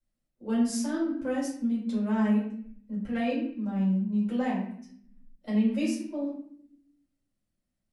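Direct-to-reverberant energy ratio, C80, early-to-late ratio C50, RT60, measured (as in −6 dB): −8.0 dB, 7.5 dB, 3.5 dB, 0.65 s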